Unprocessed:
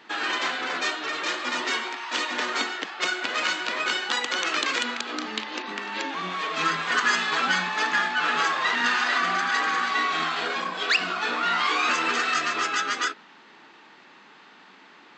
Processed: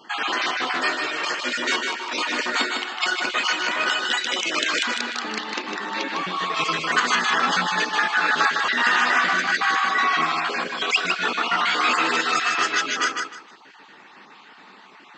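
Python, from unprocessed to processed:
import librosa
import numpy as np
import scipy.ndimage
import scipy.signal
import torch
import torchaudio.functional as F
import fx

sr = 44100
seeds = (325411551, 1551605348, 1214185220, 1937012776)

y = fx.spec_dropout(x, sr, seeds[0], share_pct=35)
y = fx.echo_feedback(y, sr, ms=154, feedback_pct=23, wet_db=-5)
y = y * librosa.db_to_amplitude(4.0)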